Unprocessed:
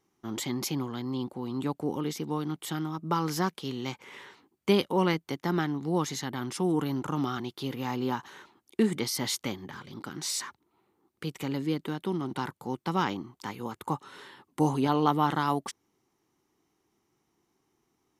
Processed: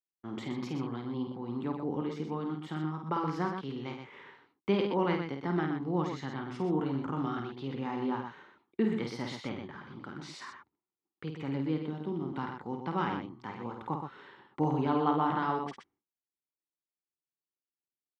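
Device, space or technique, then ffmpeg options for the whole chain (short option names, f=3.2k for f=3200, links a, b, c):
hearing-loss simulation: -filter_complex "[0:a]asettb=1/sr,asplit=3[a][b][c];[a]atrim=end=11.844[d];[b]atrim=start=11.84:end=12.28,asetpts=PTS-STARTPTS,afade=t=in:d=0.004:c=qsin,afade=t=out:st=0.436:d=0.004:c=qsin,equalizer=f=1.6k:t=o:w=1.6:g=-9[e];[c]atrim=start=12.276[f];[d][e]acrossfade=d=0.004:c1=hsin:c2=qsin[g];[g][f]acrossfade=d=0.004:c1=qsin:c2=hsin,lowpass=2.5k,agate=range=-33dB:threshold=-55dB:ratio=3:detection=peak,aecho=1:1:51|123:0.531|0.473,volume=-4.5dB"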